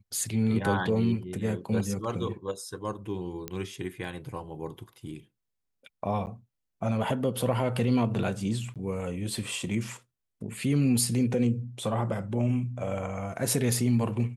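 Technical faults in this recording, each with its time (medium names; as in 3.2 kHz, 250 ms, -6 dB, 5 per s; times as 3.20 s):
3.48 s: pop -17 dBFS
6.26–6.27 s: dropout 9.6 ms
8.74–8.76 s: dropout 17 ms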